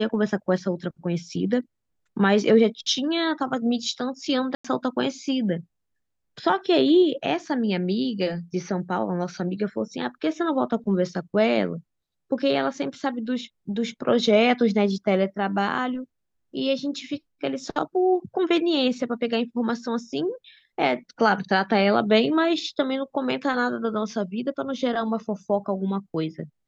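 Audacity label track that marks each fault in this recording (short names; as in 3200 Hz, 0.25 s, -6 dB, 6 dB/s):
4.550000	4.640000	gap 95 ms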